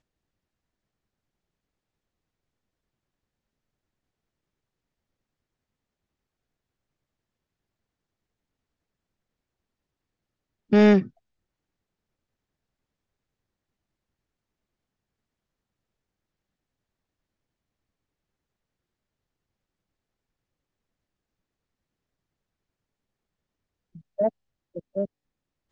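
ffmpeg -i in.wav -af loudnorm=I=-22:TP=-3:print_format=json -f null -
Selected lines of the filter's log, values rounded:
"input_i" : "-24.3",
"input_tp" : "-9.3",
"input_lra" : "9.0",
"input_thresh" : "-36.0",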